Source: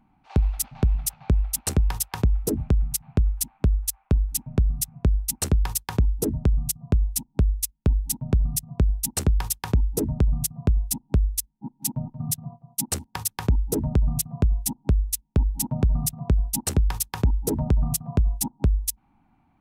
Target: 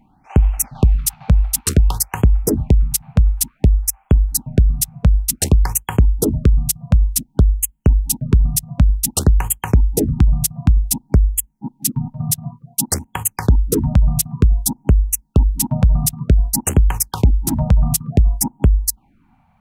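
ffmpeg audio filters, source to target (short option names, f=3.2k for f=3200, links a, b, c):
-af "afftfilt=real='re*(1-between(b*sr/1024,320*pow(4800/320,0.5+0.5*sin(2*PI*0.55*pts/sr))/1.41,320*pow(4800/320,0.5+0.5*sin(2*PI*0.55*pts/sr))*1.41))':imag='im*(1-between(b*sr/1024,320*pow(4800/320,0.5+0.5*sin(2*PI*0.55*pts/sr))/1.41,320*pow(4800/320,0.5+0.5*sin(2*PI*0.55*pts/sr))*1.41))':win_size=1024:overlap=0.75,volume=8dB"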